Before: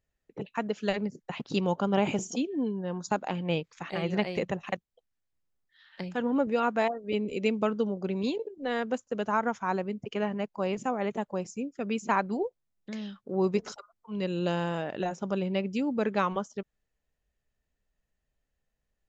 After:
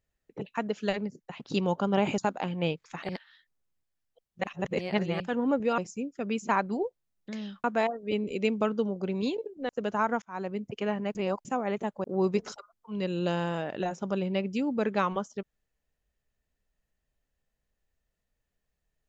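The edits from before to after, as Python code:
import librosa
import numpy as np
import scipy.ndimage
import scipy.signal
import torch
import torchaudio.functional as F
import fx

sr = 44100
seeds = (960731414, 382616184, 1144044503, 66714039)

y = fx.edit(x, sr, fx.fade_out_to(start_s=0.85, length_s=0.57, floor_db=-7.0),
    fx.cut(start_s=2.18, length_s=0.87),
    fx.reverse_span(start_s=3.96, length_s=2.11),
    fx.cut(start_s=8.7, length_s=0.33),
    fx.fade_in_span(start_s=9.56, length_s=0.34),
    fx.reverse_span(start_s=10.49, length_s=0.3),
    fx.move(start_s=11.38, length_s=1.86, to_s=6.65), tone=tone)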